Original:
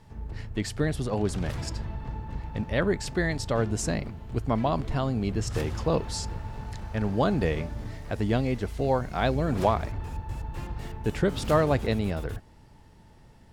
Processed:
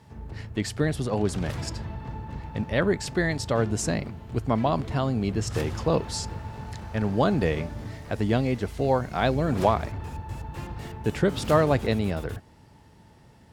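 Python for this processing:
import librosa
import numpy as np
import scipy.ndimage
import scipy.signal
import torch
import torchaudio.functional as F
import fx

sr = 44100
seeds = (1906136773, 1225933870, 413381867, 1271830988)

y = scipy.signal.sosfilt(scipy.signal.butter(2, 69.0, 'highpass', fs=sr, output='sos'), x)
y = y * librosa.db_to_amplitude(2.0)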